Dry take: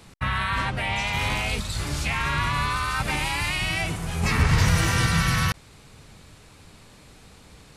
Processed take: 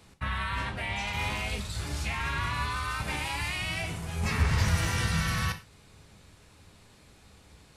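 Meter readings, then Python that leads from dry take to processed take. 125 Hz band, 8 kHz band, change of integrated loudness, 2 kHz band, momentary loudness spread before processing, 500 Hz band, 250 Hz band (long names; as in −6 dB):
−6.0 dB, −6.5 dB, −6.5 dB, −6.5 dB, 7 LU, −6.0 dB, −7.0 dB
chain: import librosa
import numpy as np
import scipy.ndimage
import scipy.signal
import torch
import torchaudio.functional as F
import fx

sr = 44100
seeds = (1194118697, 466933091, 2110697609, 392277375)

y = fx.rev_gated(x, sr, seeds[0], gate_ms=140, shape='falling', drr_db=6.0)
y = y * librosa.db_to_amplitude(-7.5)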